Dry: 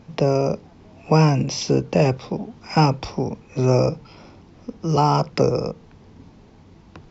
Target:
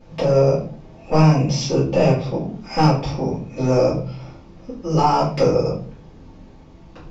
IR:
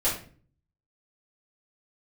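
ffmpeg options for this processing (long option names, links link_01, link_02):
-filter_complex "[0:a]acontrast=82[link_01];[1:a]atrim=start_sample=2205[link_02];[link_01][link_02]afir=irnorm=-1:irlink=0,volume=-15.5dB"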